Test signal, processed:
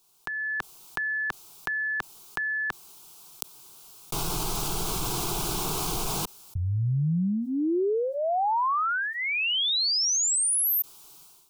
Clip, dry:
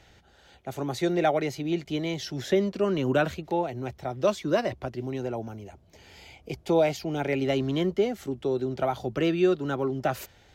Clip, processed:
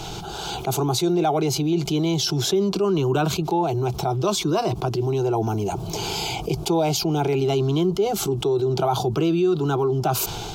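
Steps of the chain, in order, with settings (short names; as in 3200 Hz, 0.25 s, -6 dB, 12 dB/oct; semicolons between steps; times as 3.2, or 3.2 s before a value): AGC gain up to 15 dB; fixed phaser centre 370 Hz, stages 8; fast leveller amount 70%; gain -10 dB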